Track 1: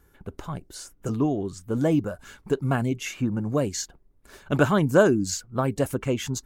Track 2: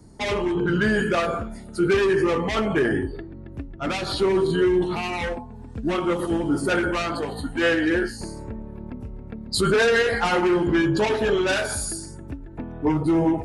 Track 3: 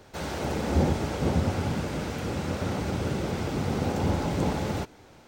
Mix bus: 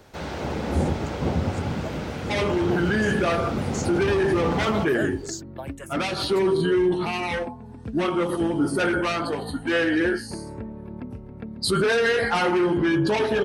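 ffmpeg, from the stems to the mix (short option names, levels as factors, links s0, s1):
-filter_complex "[0:a]highpass=f=650:w=0.5412,highpass=f=650:w=1.3066,asplit=2[s0][s1];[s1]afreqshift=-1.4[s2];[s0][s2]amix=inputs=2:normalize=1,volume=0.631[s3];[1:a]highpass=80,bandreject=f=7100:w=6.4,adelay=2100,volume=1.06[s4];[2:a]acrossover=split=5200[s5][s6];[s6]acompressor=threshold=0.00141:ratio=4:attack=1:release=60[s7];[s5][s7]amix=inputs=2:normalize=0,volume=1.12[s8];[s3][s4][s8]amix=inputs=3:normalize=0,alimiter=limit=0.2:level=0:latency=1:release=22"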